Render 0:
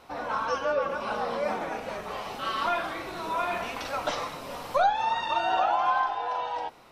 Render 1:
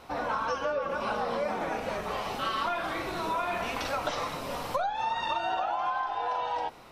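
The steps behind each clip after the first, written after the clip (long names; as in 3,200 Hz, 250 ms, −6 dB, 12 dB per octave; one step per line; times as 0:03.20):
low-shelf EQ 160 Hz +4 dB
downward compressor 10 to 1, threshold −29 dBFS, peak gain reduction 11.5 dB
level +2.5 dB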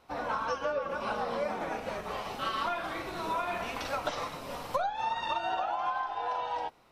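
expander for the loud parts 1.5 to 1, over −49 dBFS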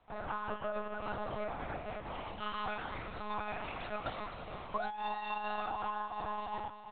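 on a send: repeating echo 343 ms, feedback 50%, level −11 dB
on the sum: one-pitch LPC vocoder at 8 kHz 210 Hz
level −6 dB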